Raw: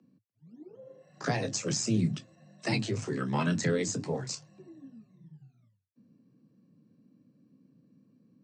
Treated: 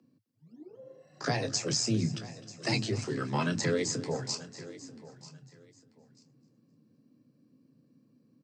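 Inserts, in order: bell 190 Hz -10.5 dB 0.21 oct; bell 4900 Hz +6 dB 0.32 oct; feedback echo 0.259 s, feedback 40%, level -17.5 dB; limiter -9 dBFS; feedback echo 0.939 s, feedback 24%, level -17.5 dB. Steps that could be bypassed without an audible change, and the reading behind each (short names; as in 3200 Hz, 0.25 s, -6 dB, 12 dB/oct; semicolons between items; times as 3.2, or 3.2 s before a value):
limiter -9 dBFS: input peak -16.0 dBFS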